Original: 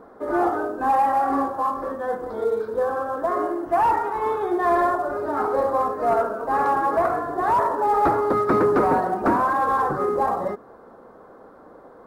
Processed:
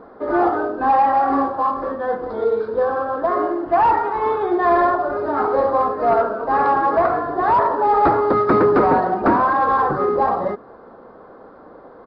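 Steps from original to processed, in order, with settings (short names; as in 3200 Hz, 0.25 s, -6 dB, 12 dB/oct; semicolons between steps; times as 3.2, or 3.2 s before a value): downsampling 11025 Hz; gain +4 dB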